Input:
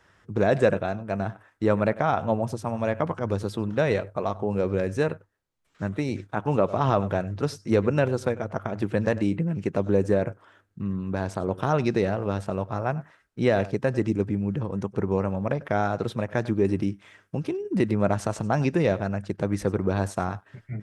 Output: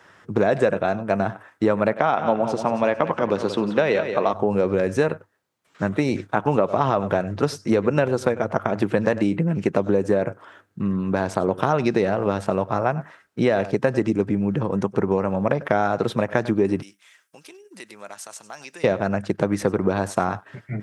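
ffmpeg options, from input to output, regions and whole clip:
-filter_complex "[0:a]asettb=1/sr,asplit=3[s0][s1][s2];[s0]atrim=end=1.974[s3];[s1]atrim=start=1.97:end=4.33,asetpts=PTS-STARTPTS,afade=t=in:d=0.004:c=qsin,afade=t=out:st=2.356:d=0.004:c=qsin,highpass=170,lowpass=6400,equalizer=f=2900:w=2:g=4,aecho=1:1:181|362|543|724:0.251|0.0904|0.0326|0.0117,atrim=end_sample=104076[s4];[s2]atrim=start=4.326[s5];[s3][s4]acrossfade=d=0.004:c1=hsin:c2=qsin[s6];[s6][s5]acrossfade=d=0.004:c1=qsin:c2=hsin,asettb=1/sr,asplit=3[s7][s8][s9];[s7]atrim=end=16.824[s10];[s8]atrim=start=16.82:end=18.84,asetpts=PTS-STARTPTS,afade=t=in:d=0.004:c=qsin,afade=t=out:st=2.016:d=0.004:c=qsin,aderivative,acompressor=threshold=0.00398:ratio=1.5:attack=3.2:release=140:knee=1:detection=peak[s11];[s9]atrim=start=18.836[s12];[s10][s11]acrossfade=d=0.004:c1=hsin:c2=qsin[s13];[s13][s12]acrossfade=d=0.004:c1=qsin:c2=hsin,equalizer=f=940:w=0.43:g=3,acompressor=threshold=0.0794:ratio=6,highpass=130,volume=2.24"

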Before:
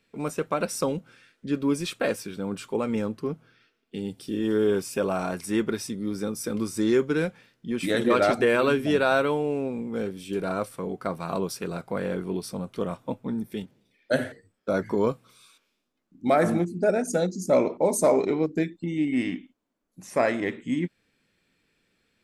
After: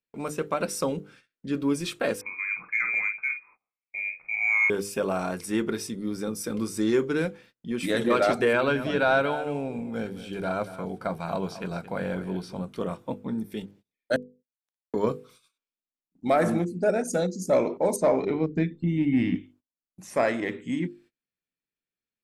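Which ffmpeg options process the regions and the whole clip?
-filter_complex "[0:a]asettb=1/sr,asplit=3[s0][s1][s2];[s0]atrim=end=2.214[s3];[s1]atrim=start=2.21:end=4.7,asetpts=PTS-STARTPTS,afade=t=in:d=0.004:c=qsin,afade=t=out:st=2.486:d=0.004:c=qsin,lowpass=f=2200:t=q:w=0.5098,lowpass=f=2200:t=q:w=0.6013,lowpass=f=2200:t=q:w=0.9,lowpass=f=2200:t=q:w=2.563,afreqshift=-2600,asplit=2[s4][s5];[s5]adelay=48,volume=0.398[s6];[s4][s6]amix=inputs=2:normalize=0,atrim=end_sample=109809[s7];[s2]atrim=start=4.696[s8];[s3][s7]acrossfade=d=0.004:c1=hsin:c2=qsin[s9];[s9][s8]acrossfade=d=0.004:c1=qsin:c2=hsin,asettb=1/sr,asplit=3[s10][s11][s12];[s10]atrim=end=8.534[s13];[s11]atrim=start=8.53:end=12.61,asetpts=PTS-STARTPTS,afade=t=in:d=0.004:c=qsin,afade=t=out:st=4.076:d=0.004:c=qsin,acrossover=split=4700[s14][s15];[s15]acompressor=threshold=0.00158:ratio=4:attack=1:release=60[s16];[s14][s16]amix=inputs=2:normalize=0,aecho=1:1:1.3:0.37,atrim=end_sample=179928,aecho=1:1:224:0.211,atrim=end_sample=179928[s17];[s12]atrim=start=12.606[s18];[s13][s17]acrossfade=d=0.004:c1=hsin:c2=qsin[s19];[s19][s18]acrossfade=d=0.004:c1=qsin:c2=hsin,asettb=1/sr,asplit=3[s20][s21][s22];[s20]atrim=end=14.164[s23];[s21]atrim=start=14.16:end=14.94,asetpts=PTS-STARTPTS,afade=t=in:d=0.004:c=qsin,afade=t=out:st=0.776:d=0.004:c=qsin,highpass=f=1500:w=0.5412,highpass=f=1500:w=1.3066,acompressor=threshold=0.00447:ratio=16:attack=3.2:release=140:knee=1:detection=peak,acrusher=bits=5:mix=0:aa=0.5[s24];[s22]atrim=start=14.936[s25];[s23][s24]acrossfade=d=0.004:c1=hsin:c2=qsin[s26];[s26][s25]acrossfade=d=0.004:c1=qsin:c2=hsin,asettb=1/sr,asplit=3[s27][s28][s29];[s27]atrim=end=17.964[s30];[s28]atrim=start=17.96:end=19.35,asetpts=PTS-STARTPTS,afade=t=in:d=0.004:c=qsin,afade=t=out:st=1.386:d=0.004:c=qsin,lowpass=3800,asubboost=boost=10.5:cutoff=220[s31];[s29]atrim=start=19.346[s32];[s30][s31]acrossfade=d=0.004:c1=hsin:c2=qsin[s33];[s33][s32]acrossfade=d=0.004:c1=qsin:c2=hsin,acontrast=54,bandreject=f=50:t=h:w=6,bandreject=f=100:t=h:w=6,bandreject=f=150:t=h:w=6,bandreject=f=200:t=h:w=6,bandreject=f=250:t=h:w=6,bandreject=f=300:t=h:w=6,bandreject=f=350:t=h:w=6,bandreject=f=400:t=h:w=6,bandreject=f=450:t=h:w=6,bandreject=f=500:t=h:w=6,agate=range=0.0562:threshold=0.00501:ratio=16:detection=peak,volume=0.473"

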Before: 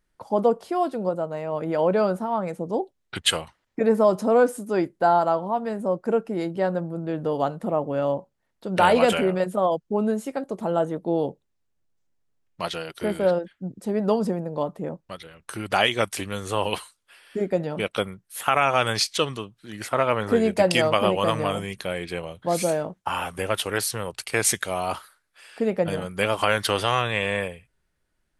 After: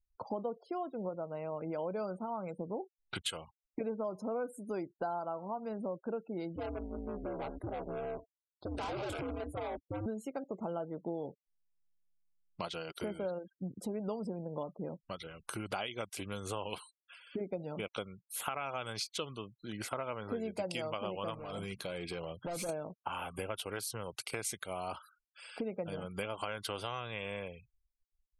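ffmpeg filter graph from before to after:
-filter_complex "[0:a]asettb=1/sr,asplit=3[s0][s1][s2];[s0]atrim=end=6.564[s3];[s1]atrim=start=6.56:end=10.06,asetpts=PTS-STARTPTS,afade=t=in:d=0.004:c=qsin,afade=t=out:st=3.496:d=0.004:c=qsin,bandreject=f=3000:w=5.6,volume=15.8,asoftclip=hard,volume=0.0631,aeval=exprs='val(0)*sin(2*PI*110*n/s)':c=same[s4];[s2]atrim=start=10.056[s5];[s3][s4]acrossfade=d=0.004:c1=hsin:c2=qsin[s6];[s6][s5]acrossfade=d=0.004:c1=qsin:c2=hsin,asettb=1/sr,asplit=3[s7][s8][s9];[s7]atrim=end=21.344[s10];[s8]atrim=start=21.34:end=22.69,asetpts=PTS-STARTPTS,afade=t=in:d=0.004:c=qsin,afade=t=out:st=1.346:d=0.004:c=qsin,lowshelf=f=63:g=-4.5,acompressor=threshold=0.0355:ratio=2:attack=3.2:release=140:knee=1:detection=peak,asoftclip=type=hard:threshold=0.0355[s11];[s9]atrim=start=22.686[s12];[s10][s11]acrossfade=d=0.004:c1=hsin:c2=qsin[s13];[s13][s12]acrossfade=d=0.004:c1=qsin:c2=hsin,acompressor=threshold=0.0158:ratio=4,bandreject=f=1800:w=5.9,afftfilt=real='re*gte(hypot(re,im),0.00282)':imag='im*gte(hypot(re,im),0.00282)':win_size=1024:overlap=0.75,volume=0.841"

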